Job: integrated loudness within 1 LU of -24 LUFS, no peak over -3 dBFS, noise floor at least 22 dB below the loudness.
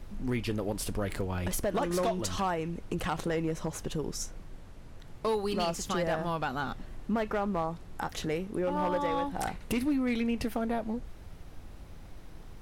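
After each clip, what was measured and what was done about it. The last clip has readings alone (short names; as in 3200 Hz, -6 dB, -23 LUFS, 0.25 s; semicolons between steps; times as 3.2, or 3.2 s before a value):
clipped 1.0%; flat tops at -23.0 dBFS; noise floor -47 dBFS; noise floor target -55 dBFS; loudness -32.5 LUFS; peak -23.0 dBFS; loudness target -24.0 LUFS
-> clip repair -23 dBFS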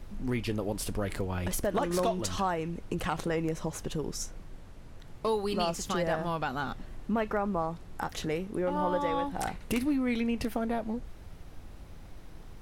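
clipped 0.0%; noise floor -47 dBFS; noise floor target -54 dBFS
-> noise print and reduce 7 dB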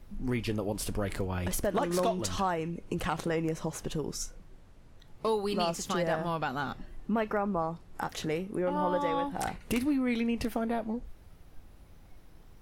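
noise floor -54 dBFS; loudness -32.0 LUFS; peak -14.0 dBFS; loudness target -24.0 LUFS
-> gain +8 dB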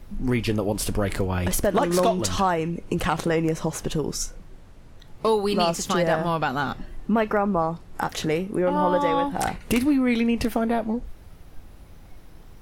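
loudness -24.0 LUFS; peak -6.0 dBFS; noise floor -46 dBFS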